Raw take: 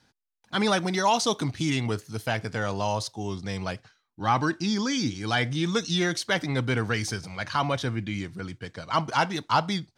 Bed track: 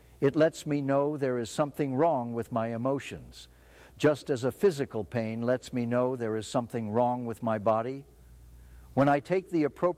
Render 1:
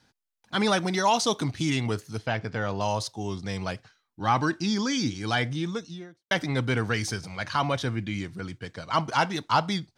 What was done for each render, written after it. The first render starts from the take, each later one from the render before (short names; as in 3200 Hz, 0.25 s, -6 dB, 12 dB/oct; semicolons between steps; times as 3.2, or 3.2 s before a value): 2.18–2.81 air absorption 130 m; 5.25–6.31 studio fade out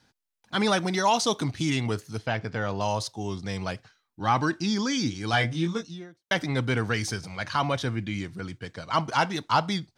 5.31–5.83 doubler 18 ms -3.5 dB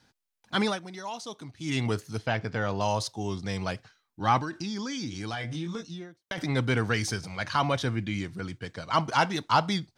0.59–1.8 dip -14.5 dB, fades 0.20 s; 4.38–6.38 compressor, threshold -30 dBFS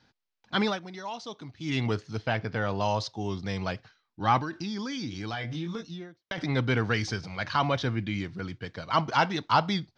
LPF 5400 Hz 24 dB/oct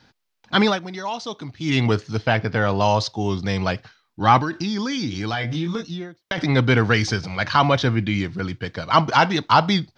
gain +9 dB; limiter -3 dBFS, peak gain reduction 2 dB